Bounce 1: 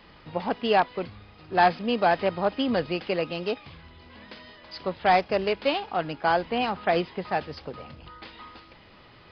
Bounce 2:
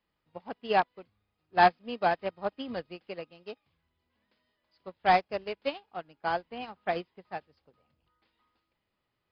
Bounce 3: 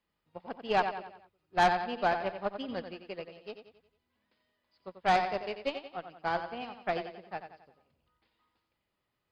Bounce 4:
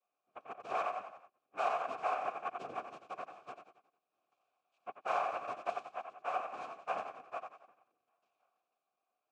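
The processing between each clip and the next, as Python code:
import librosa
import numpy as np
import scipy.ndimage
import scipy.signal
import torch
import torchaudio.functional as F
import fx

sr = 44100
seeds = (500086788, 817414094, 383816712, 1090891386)

y1 = fx.upward_expand(x, sr, threshold_db=-36.0, expansion=2.5)
y2 = fx.echo_feedback(y1, sr, ms=90, feedback_pct=46, wet_db=-9)
y2 = fx.tube_stage(y2, sr, drive_db=18.0, bias=0.45)
y3 = 10.0 ** (-29.0 / 20.0) * np.tanh(y2 / 10.0 ** (-29.0 / 20.0))
y3 = fx.noise_vocoder(y3, sr, seeds[0], bands=3)
y3 = fx.vowel_filter(y3, sr, vowel='a')
y3 = y3 * 10.0 ** (8.5 / 20.0)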